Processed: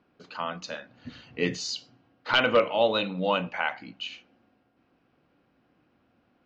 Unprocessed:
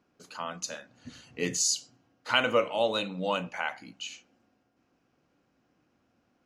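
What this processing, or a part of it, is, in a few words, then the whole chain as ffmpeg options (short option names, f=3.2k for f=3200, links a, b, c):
synthesiser wavefolder: -af "aeval=exprs='0.168*(abs(mod(val(0)/0.168+3,4)-2)-1)':c=same,lowpass=f=4.2k:w=0.5412,lowpass=f=4.2k:w=1.3066,volume=4dB"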